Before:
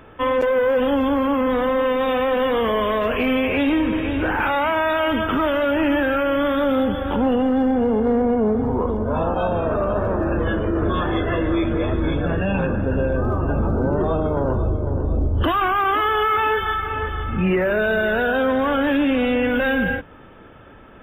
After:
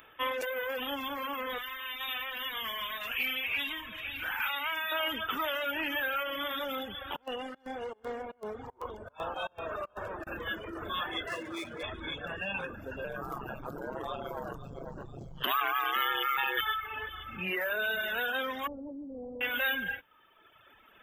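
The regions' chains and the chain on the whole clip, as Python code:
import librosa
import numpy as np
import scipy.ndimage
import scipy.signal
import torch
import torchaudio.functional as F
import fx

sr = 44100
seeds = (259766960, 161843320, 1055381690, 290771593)

y = fx.chain(x, sr, fx.peak_eq(hz=440.0, db=-14.0, octaves=1.7),
    fx.echo_single(ms=946, db=-11.5), at=(1.58, 4.92))
y = fx.chain(y, sr, fx.lowpass(hz=9800.0, slope=12),
    fx.peak_eq(hz=230.0, db=-6.5, octaves=0.47),
    fx.volume_shaper(bpm=156, per_beat=1, depth_db=-22, release_ms=112.0, shape='slow start'), at=(7.16, 10.27))
y = fx.chain(y, sr, fx.median_filter(points=9),
    fx.highpass(hz=93.0, slope=24),
    fx.high_shelf(hz=5500.0, db=-11.5), at=(11.27, 11.83))
y = fx.chain(y, sr, fx.ring_mod(carrier_hz=66.0),
    fx.env_flatten(amount_pct=100), at=(13.04, 16.61))
y = fx.chain(y, sr, fx.gaussian_blur(sigma=15.0),
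    fx.env_flatten(amount_pct=70), at=(18.67, 19.41))
y = librosa.effects.preemphasis(y, coef=0.97, zi=[0.0])
y = fx.dereverb_blind(y, sr, rt60_s=1.4)
y = y * 10.0 ** (7.0 / 20.0)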